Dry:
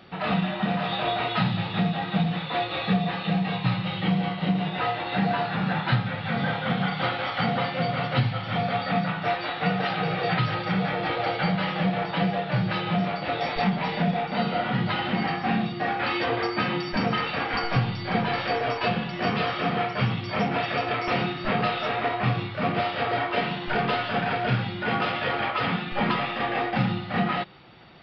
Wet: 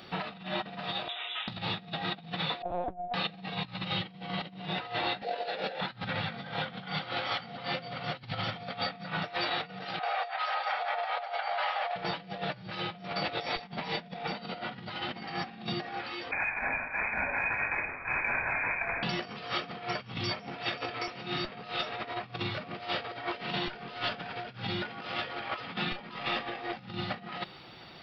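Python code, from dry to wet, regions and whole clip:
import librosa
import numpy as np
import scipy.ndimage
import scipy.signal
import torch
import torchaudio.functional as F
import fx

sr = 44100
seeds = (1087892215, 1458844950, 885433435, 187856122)

y = fx.chain(x, sr, fx.highpass(hz=340.0, slope=24),
    fx.differentiator(),
    fx.resample_bad(factor=6, down='none', up='filtered'), at=(1.08, 1.48))
y = fx.chain(y, sr, fx.lowpass_res(hz=680.0, q=3.4),
    fx.comb_fb(f0_hz=180.0, decay_s=0.55, harmonics='all', damping=0.0, mix_pct=60),
    fx.lpc_vocoder(seeds[0], excitation='pitch_kept', order=10), at=(2.62, 3.14))
y = fx.chain(y, sr, fx.highpass_res(hz=510.0, q=4.5),
    fx.peak_eq(hz=1100.0, db=-12.5, octaves=0.75),
    fx.over_compress(threshold_db=-26.0, ratio=-0.5), at=(5.22, 5.81))
y = fx.chain(y, sr, fx.ellip_highpass(hz=670.0, order=4, stop_db=60),
    fx.tilt_eq(slope=-4.5), at=(9.99, 11.96))
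y = fx.chain(y, sr, fx.lower_of_two(delay_ms=1.2),
    fx.brickwall_highpass(low_hz=750.0),
    fx.freq_invert(carrier_hz=3300), at=(16.31, 19.03))
y = fx.over_compress(y, sr, threshold_db=-31.0, ratio=-0.5)
y = fx.bass_treble(y, sr, bass_db=-3, treble_db=11)
y = y * 10.0 ** (-4.0 / 20.0)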